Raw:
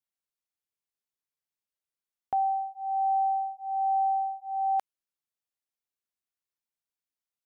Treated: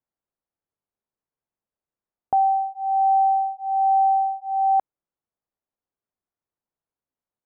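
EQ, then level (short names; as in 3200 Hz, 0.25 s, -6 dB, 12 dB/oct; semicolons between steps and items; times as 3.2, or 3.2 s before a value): LPF 1000 Hz 12 dB/oct; +9.0 dB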